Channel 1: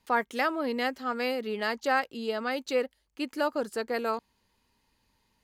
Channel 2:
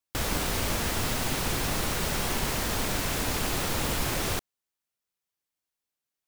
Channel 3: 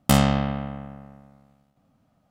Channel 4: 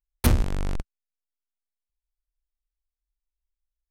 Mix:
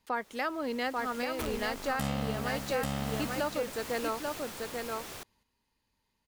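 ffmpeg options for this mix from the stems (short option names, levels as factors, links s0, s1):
-filter_complex "[0:a]volume=0.708,asplit=3[s0][s1][s2];[s1]volume=0.596[s3];[1:a]lowshelf=f=160:g=-11.5,dynaudnorm=f=200:g=11:m=2.51,volume=0.141,asplit=2[s4][s5];[s5]volume=0.631[s6];[2:a]adelay=1900,volume=0.501,asplit=2[s7][s8];[s8]volume=0.596[s9];[3:a]bass=f=250:g=-14,treble=f=4000:g=-8,aeval=exprs='(mod(7.94*val(0)+1,2)-1)/7.94':c=same,adelay=1150,volume=0.422[s10];[s2]apad=whole_len=276683[s11];[s4][s11]sidechaincompress=threshold=0.0178:ratio=8:attack=26:release=1410[s12];[s3][s6][s9]amix=inputs=3:normalize=0,aecho=0:1:839:1[s13];[s0][s12][s7][s10][s13]amix=inputs=5:normalize=0,alimiter=limit=0.0841:level=0:latency=1:release=329"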